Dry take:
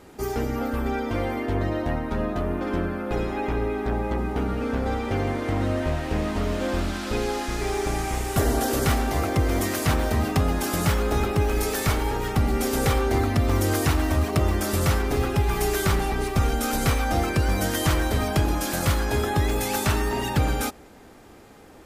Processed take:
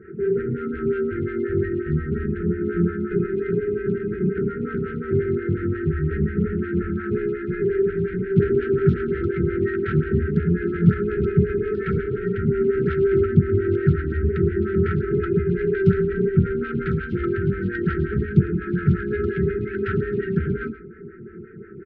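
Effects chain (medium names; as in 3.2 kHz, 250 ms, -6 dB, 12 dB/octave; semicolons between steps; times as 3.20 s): steep low-pass 1.8 kHz 36 dB/octave; bass shelf 150 Hz -10 dB; comb 5.3 ms, depth 53%; in parallel at -1 dB: compression, threshold -39 dBFS, peak gain reduction 18 dB; on the sum: saturation -19 dBFS, distortion -17 dB; brick-wall FIR band-stop 470–1300 Hz; delay 105 ms -15.5 dB; on a send at -6.5 dB: reverberation RT60 0.35 s, pre-delay 3 ms; on the sum: lamp-driven phase shifter 5.6 Hz; trim +4 dB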